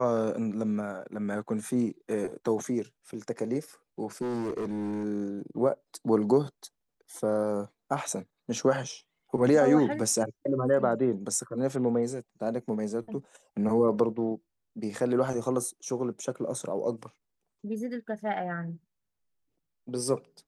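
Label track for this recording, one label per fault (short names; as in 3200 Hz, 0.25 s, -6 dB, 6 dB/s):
4.210000	5.050000	clipped -28.5 dBFS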